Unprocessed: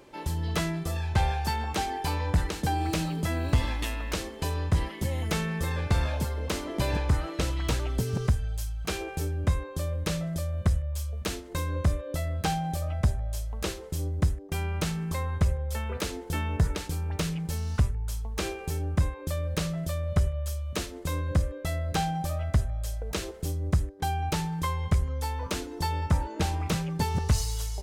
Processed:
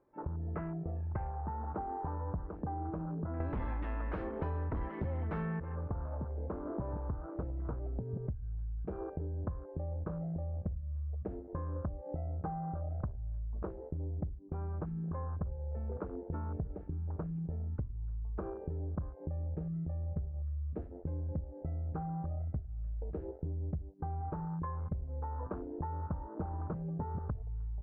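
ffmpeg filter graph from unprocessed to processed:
ffmpeg -i in.wav -filter_complex "[0:a]asettb=1/sr,asplit=3[link_01][link_02][link_03];[link_01]atrim=end=3.404[link_04];[link_02]atrim=start=3.4:end=5.6,asetpts=PTS-STARTPTS,afade=type=in:duration=0.004:curve=qsin,afade=type=out:start_time=2.196:duration=0.004:curve=qsin,highshelf=frequency=3400:gain=9.5,aeval=exprs='0.224*sin(PI/2*2.51*val(0)/0.224)':channel_layout=same[link_05];[link_03]atrim=start=5.596[link_06];[link_04][link_05]acrossfade=duration=0.004:curve1=hsin:curve2=qsin[link_07];[link_07][link_06]acrossfade=duration=0.004:curve1=qsin:curve2=hsin,asettb=1/sr,asplit=3[link_08][link_09][link_10];[link_08]atrim=end=19.264[link_11];[link_09]atrim=start=19.26:end=24.21,asetpts=PTS-STARTPTS,afade=type=in:duration=0.004:curve=qsin,afade=type=out:start_time=4.946:duration=0.004:curve=qsin,equalizer=frequency=730:width_type=o:width=0.96:gain=-5,asplit=2[link_12][link_13];[link_13]adelay=13,volume=-7.5dB[link_14];[link_12][link_14]amix=inputs=2:normalize=0,atrim=end_sample=218295[link_15];[link_10]atrim=start=24.206[link_16];[link_11][link_15]acrossfade=duration=0.004:curve1=hsin:curve2=qsin[link_17];[link_17][link_16]acrossfade=duration=0.004:curve1=qsin:curve2=hsin,afwtdn=0.02,lowpass=frequency=1500:width=0.5412,lowpass=frequency=1500:width=1.3066,acompressor=threshold=-33dB:ratio=6,volume=-2dB" out.wav

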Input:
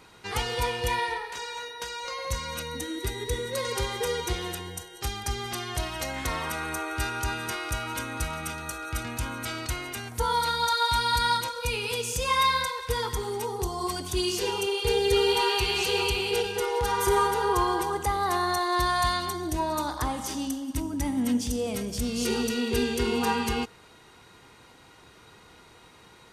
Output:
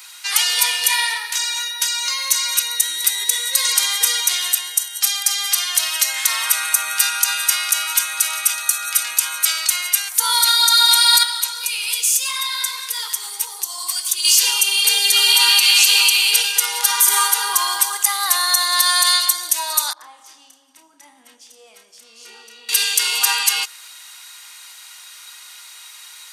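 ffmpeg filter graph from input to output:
ffmpeg -i in.wav -filter_complex "[0:a]asettb=1/sr,asplit=3[link_01][link_02][link_03];[link_01]atrim=end=11.234[link_04];[link_02]atrim=start=11.23:end=14.25,asetpts=PTS-STARTPTS,afade=type=in:duration=0.004:curve=qsin,afade=type=out:start_time=3.016:duration=0.004:curve=qsin,acompressor=threshold=-29dB:ratio=3:attack=3.2:release=140:knee=1:detection=peak,flanger=delay=1.7:depth=9.8:regen=-61:speed=1.7:shape=triangular[link_05];[link_03]atrim=start=14.246[link_06];[link_04][link_05]acrossfade=duration=0.004:curve1=hsin:curve2=qsin[link_07];[link_07][link_06]acrossfade=duration=0.004:curve1=qsin:curve2=hsin,asettb=1/sr,asplit=3[link_08][link_09][link_10];[link_08]atrim=end=19.934[link_11];[link_09]atrim=start=19.93:end=22.69,asetpts=PTS-STARTPTS,afade=type=in:duration=0.004:curve=qsin,afade=type=out:start_time=2.756:duration=0.004:curve=qsin,bandpass=frequency=150:width_type=q:width=0.77,asplit=2[link_12][link_13];[link_13]adelay=31,volume=-7dB[link_14];[link_12][link_14]amix=inputs=2:normalize=0,atrim=end_sample=121716[link_15];[link_10]atrim=start=22.686[link_16];[link_11][link_15]acrossfade=duration=0.004:curve1=hsin:curve2=qsin[link_17];[link_17][link_16]acrossfade=duration=0.004:curve1=qsin:curve2=hsin,highpass=980,aderivative,alimiter=level_in=23.5dB:limit=-1dB:release=50:level=0:latency=1,volume=-1dB" out.wav

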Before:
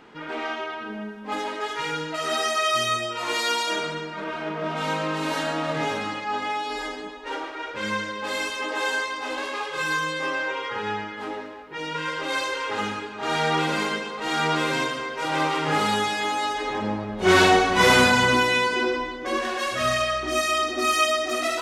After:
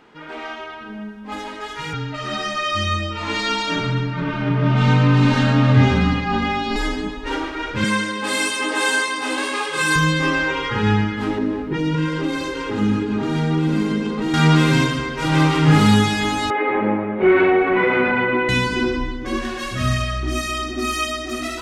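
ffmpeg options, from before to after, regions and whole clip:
ffmpeg -i in.wav -filter_complex "[0:a]asettb=1/sr,asplit=3[link_01][link_02][link_03];[link_01]atrim=end=1.934[link_04];[link_02]atrim=start=1.93:end=6.76,asetpts=PTS-STARTPTS,afade=type=in:duration=0.004:curve=qsin,afade=type=out:start_time=4.826:duration=0.004:curve=qsin,lowpass=4900,afreqshift=-28[link_05];[link_03]atrim=start=6.756[link_06];[link_04][link_05]acrossfade=duration=0.004:curve1=hsin:curve2=qsin[link_07];[link_07][link_06]acrossfade=duration=0.004:curve1=qsin:curve2=hsin,asettb=1/sr,asplit=3[link_08][link_09][link_10];[link_08]atrim=end=7.844[link_11];[link_09]atrim=start=7.84:end=9.96,asetpts=PTS-STARTPTS,afade=type=in:duration=0.004:curve=qsin,afade=type=out:start_time=2.116:duration=0.004:curve=qsin,highpass=300,equalizer=frequency=8800:width_type=o:width=0.23:gain=14[link_12];[link_10]atrim=start=9.956[link_13];[link_11][link_12]acrossfade=duration=0.004:curve1=hsin:curve2=qsin[link_14];[link_14][link_13]acrossfade=duration=0.004:curve1=qsin:curve2=hsin,asettb=1/sr,asplit=3[link_15][link_16][link_17];[link_15]atrim=end=11.384[link_18];[link_16]atrim=start=11.38:end=14.34,asetpts=PTS-STARTPTS,afade=type=in:duration=0.004:curve=qsin,afade=type=out:start_time=2.956:duration=0.004:curve=qsin,equalizer=frequency=310:width_type=o:width=2:gain=11,acompressor=threshold=-28dB:ratio=5:attack=3.2:release=140:knee=1:detection=peak[link_19];[link_17]atrim=start=14.336[link_20];[link_18][link_19]acrossfade=duration=0.004:curve1=hsin:curve2=qsin[link_21];[link_21][link_20]acrossfade=duration=0.004:curve1=qsin:curve2=hsin,asettb=1/sr,asplit=3[link_22][link_23][link_24];[link_22]atrim=end=16.504[link_25];[link_23]atrim=start=16.5:end=18.49,asetpts=PTS-STARTPTS,afade=type=in:duration=0.004:curve=qsin,afade=type=out:start_time=1.986:duration=0.004:curve=qsin,highpass=350,equalizer=frequency=370:width_type=q:width=4:gain=9,equalizer=frequency=540:width_type=q:width=4:gain=9,equalizer=frequency=810:width_type=q:width=4:gain=5,equalizer=frequency=1300:width_type=q:width=4:gain=4,equalizer=frequency=2200:width_type=q:width=4:gain=9,lowpass=frequency=2400:width=0.5412,lowpass=frequency=2400:width=1.3066,acompressor=threshold=-17dB:ratio=4:attack=3.2:release=140:knee=1:detection=peak[link_26];[link_24]atrim=start=18.486[link_27];[link_25][link_26]acrossfade=duration=0.004:curve1=hsin:curve2=qsin[link_28];[link_28][link_27]acrossfade=duration=0.004:curve1=qsin:curve2=hsin,asubboost=boost=10:cutoff=180,dynaudnorm=framelen=230:gausssize=31:maxgain=11.5dB,volume=-1dB" out.wav

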